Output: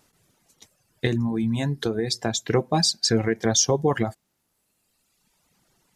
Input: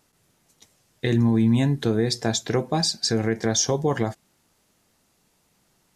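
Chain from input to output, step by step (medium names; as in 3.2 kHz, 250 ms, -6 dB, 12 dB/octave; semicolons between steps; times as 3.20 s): reverb removal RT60 1.6 s; 1.06–2.46 s: compression, threshold -23 dBFS, peak gain reduction 6.5 dB; trim +2.5 dB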